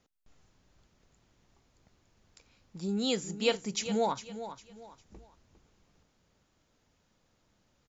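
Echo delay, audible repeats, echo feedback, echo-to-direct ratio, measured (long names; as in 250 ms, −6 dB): 404 ms, 3, 31%, −11.5 dB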